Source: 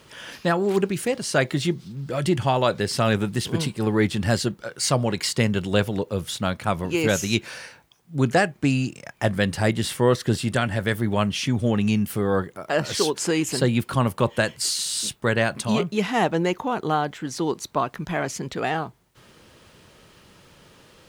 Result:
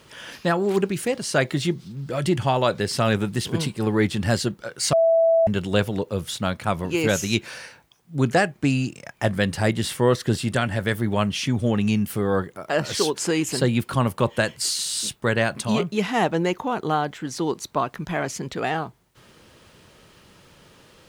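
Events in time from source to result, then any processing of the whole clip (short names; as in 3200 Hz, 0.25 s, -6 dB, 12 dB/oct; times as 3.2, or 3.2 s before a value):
4.93–5.47 bleep 659 Hz -14 dBFS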